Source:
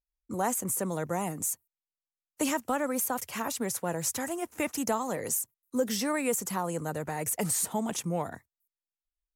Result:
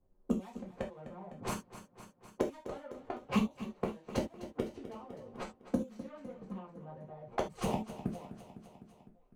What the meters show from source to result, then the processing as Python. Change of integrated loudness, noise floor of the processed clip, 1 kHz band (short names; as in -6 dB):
-8.5 dB, -67 dBFS, -9.5 dB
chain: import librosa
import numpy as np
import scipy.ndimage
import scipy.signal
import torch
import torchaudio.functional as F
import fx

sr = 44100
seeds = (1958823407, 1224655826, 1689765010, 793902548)

p1 = scipy.ndimage.median_filter(x, 25, mode='constant')
p2 = fx.high_shelf(p1, sr, hz=11000.0, db=-6.5)
p3 = fx.gate_flip(p2, sr, shuts_db=-30.0, range_db=-34)
p4 = fx.env_lowpass(p3, sr, base_hz=590.0, full_db=-49.0)
p5 = fx.env_flanger(p4, sr, rest_ms=11.0, full_db=-44.0)
p6 = fx.peak_eq(p5, sr, hz=110.0, db=-4.0, octaves=0.77)
p7 = p6 + fx.echo_feedback(p6, sr, ms=253, feedback_pct=51, wet_db=-16.0, dry=0)
p8 = fx.rev_gated(p7, sr, seeds[0], gate_ms=100, shape='falling', drr_db=-2.0)
p9 = fx.band_squash(p8, sr, depth_pct=40)
y = F.gain(torch.from_numpy(p9), 14.0).numpy()